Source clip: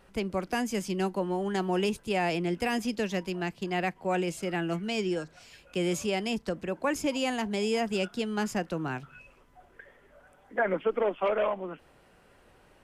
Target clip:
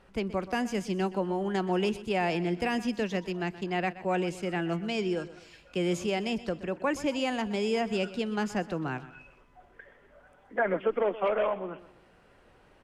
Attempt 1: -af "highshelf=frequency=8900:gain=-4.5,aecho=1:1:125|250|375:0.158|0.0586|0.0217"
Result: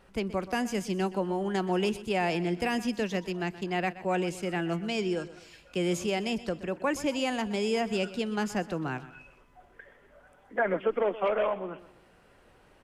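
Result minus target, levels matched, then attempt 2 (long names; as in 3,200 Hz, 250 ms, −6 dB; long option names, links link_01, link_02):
8,000 Hz band +3.5 dB
-af "highshelf=frequency=8900:gain=-14,aecho=1:1:125|250|375:0.158|0.0586|0.0217"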